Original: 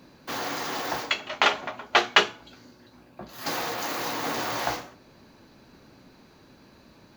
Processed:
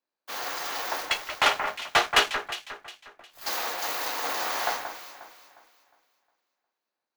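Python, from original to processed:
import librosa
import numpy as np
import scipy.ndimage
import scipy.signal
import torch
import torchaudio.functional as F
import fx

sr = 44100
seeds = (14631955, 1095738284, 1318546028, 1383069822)

y = np.where(x < 0.0, 10.0 ** (-7.0 / 20.0) * x, x)
y = scipy.signal.sosfilt(scipy.signal.butter(2, 560.0, 'highpass', fs=sr, output='sos'), y)
y = fx.high_shelf(y, sr, hz=12000.0, db=4.5)
y = fx.leveller(y, sr, passes=3)
y = fx.echo_alternate(y, sr, ms=179, hz=2100.0, feedback_pct=68, wet_db=-5.5)
y = fx.band_widen(y, sr, depth_pct=40)
y = y * 10.0 ** (-9.0 / 20.0)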